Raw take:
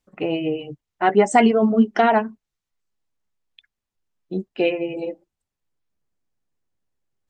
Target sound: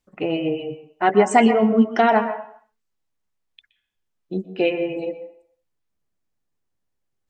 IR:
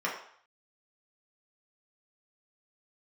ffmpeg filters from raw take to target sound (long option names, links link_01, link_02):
-filter_complex "[0:a]asplit=2[link_01][link_02];[1:a]atrim=start_sample=2205,adelay=121[link_03];[link_02][link_03]afir=irnorm=-1:irlink=0,volume=-18dB[link_04];[link_01][link_04]amix=inputs=2:normalize=0"